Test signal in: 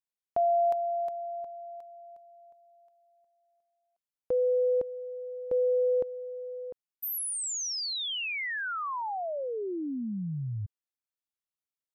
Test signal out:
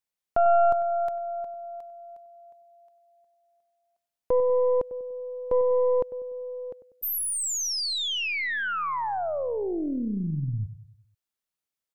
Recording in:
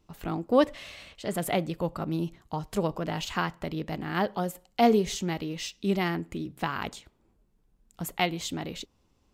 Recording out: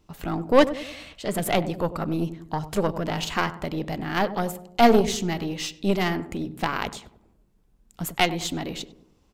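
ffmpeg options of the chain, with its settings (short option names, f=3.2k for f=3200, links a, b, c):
-filter_complex "[0:a]asplit=2[a][b];[b]adelay=97,lowpass=f=970:p=1,volume=-12dB,asplit=2[c][d];[d]adelay=97,lowpass=f=970:p=1,volume=0.5,asplit=2[e][f];[f]adelay=97,lowpass=f=970:p=1,volume=0.5,asplit=2[g][h];[h]adelay=97,lowpass=f=970:p=1,volume=0.5,asplit=2[i][j];[j]adelay=97,lowpass=f=970:p=1,volume=0.5[k];[a][c][e][g][i][k]amix=inputs=6:normalize=0,aeval=exprs='0.398*(cos(1*acos(clip(val(0)/0.398,-1,1)))-cos(1*PI/2))+0.0501*(cos(6*acos(clip(val(0)/0.398,-1,1)))-cos(6*PI/2))':c=same,volume=4.5dB"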